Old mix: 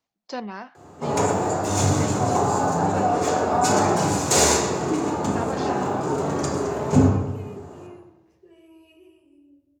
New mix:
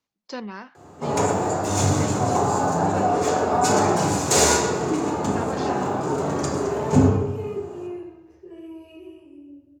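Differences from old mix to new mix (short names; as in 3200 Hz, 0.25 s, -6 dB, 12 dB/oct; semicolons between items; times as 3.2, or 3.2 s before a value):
speech: add bell 710 Hz -8.5 dB 0.39 oct; second sound: send +11.0 dB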